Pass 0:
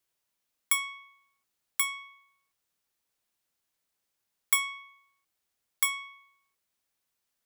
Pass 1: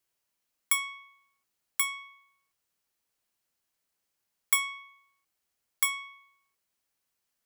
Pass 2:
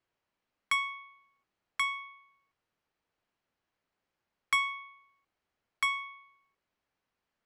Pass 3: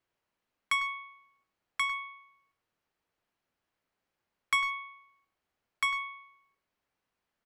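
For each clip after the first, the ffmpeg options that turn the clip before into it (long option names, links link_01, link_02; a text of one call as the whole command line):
ffmpeg -i in.wav -af "bandreject=frequency=3600:width=19" out.wav
ffmpeg -i in.wav -af "adynamicsmooth=sensitivity=3.5:basefreq=5700,aemphasis=mode=reproduction:type=75fm,volume=4.5dB" out.wav
ffmpeg -i in.wav -filter_complex "[0:a]asplit=2[link_01][link_02];[link_02]adelay=100,highpass=300,lowpass=3400,asoftclip=type=hard:threshold=-24dB,volume=-11dB[link_03];[link_01][link_03]amix=inputs=2:normalize=0" out.wav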